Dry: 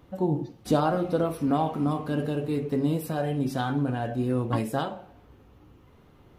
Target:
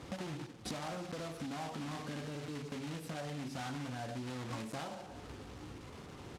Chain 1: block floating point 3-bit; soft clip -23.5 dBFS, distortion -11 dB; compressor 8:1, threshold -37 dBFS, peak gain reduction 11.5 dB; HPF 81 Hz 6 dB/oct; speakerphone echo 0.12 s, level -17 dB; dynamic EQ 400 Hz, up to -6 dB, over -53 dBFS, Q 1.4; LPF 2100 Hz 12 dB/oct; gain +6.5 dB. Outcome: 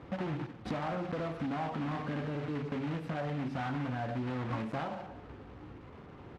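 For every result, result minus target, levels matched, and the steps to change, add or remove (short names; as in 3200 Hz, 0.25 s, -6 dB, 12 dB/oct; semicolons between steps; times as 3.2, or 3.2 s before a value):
8000 Hz band -19.5 dB; compressor: peak gain reduction -7 dB
change: LPF 8000 Hz 12 dB/oct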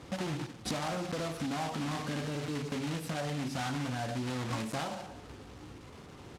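compressor: peak gain reduction -7 dB
change: compressor 8:1, threshold -45 dBFS, peak gain reduction 18.5 dB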